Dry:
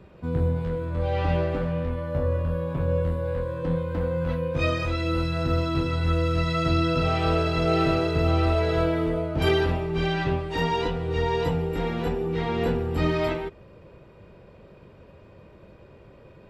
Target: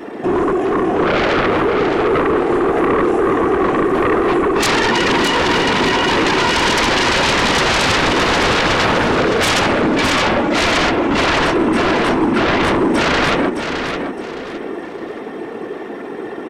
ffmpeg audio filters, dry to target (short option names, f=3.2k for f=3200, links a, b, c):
-filter_complex "[0:a]highpass=f=390:w=0.5412,highpass=f=390:w=1.3066,asplit=2[a][b];[b]acompressor=threshold=-41dB:ratio=10,volume=0dB[c];[a][c]amix=inputs=2:normalize=0,afftfilt=real='hypot(re,im)*cos(2*PI*random(0))':imag='hypot(re,im)*sin(2*PI*random(1))':win_size=512:overlap=0.75,aeval=exprs='0.119*sin(PI/2*6.31*val(0)/0.119)':c=same,asetrate=32097,aresample=44100,atempo=1.37395,aecho=1:1:614|1228|1842|2456:0.447|0.134|0.0402|0.0121,volume=6.5dB"